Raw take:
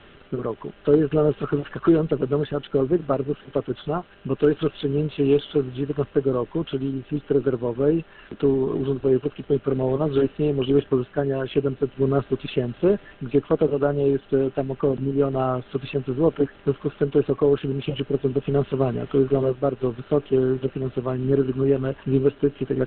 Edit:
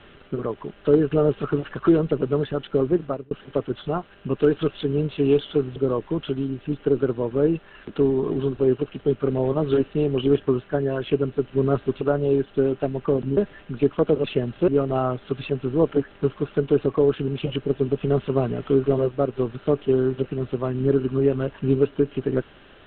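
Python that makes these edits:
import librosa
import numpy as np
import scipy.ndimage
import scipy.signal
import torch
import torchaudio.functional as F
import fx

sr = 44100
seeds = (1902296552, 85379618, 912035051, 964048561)

y = fx.edit(x, sr, fx.fade_out_span(start_s=2.97, length_s=0.34),
    fx.cut(start_s=5.76, length_s=0.44),
    fx.swap(start_s=12.45, length_s=0.44, other_s=13.76, other_length_s=1.36), tone=tone)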